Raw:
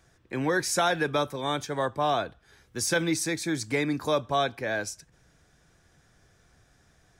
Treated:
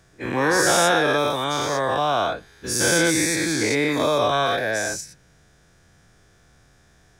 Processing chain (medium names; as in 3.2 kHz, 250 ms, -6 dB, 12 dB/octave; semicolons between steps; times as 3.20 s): every event in the spectrogram widened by 240 ms